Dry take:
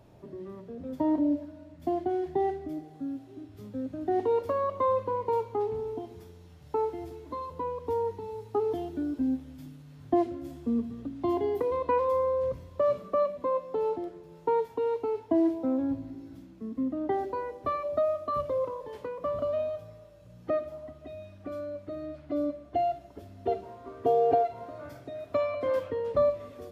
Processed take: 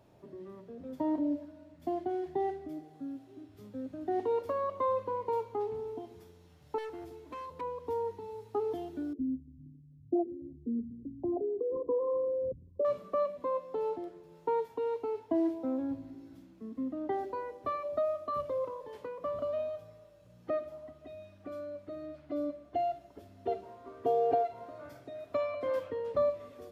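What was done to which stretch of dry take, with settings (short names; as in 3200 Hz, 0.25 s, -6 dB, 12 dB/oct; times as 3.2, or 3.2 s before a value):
6.78–7.61 hard clip -34 dBFS
9.13–12.85 formant sharpening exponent 3
whole clip: low shelf 140 Hz -7 dB; gain -4 dB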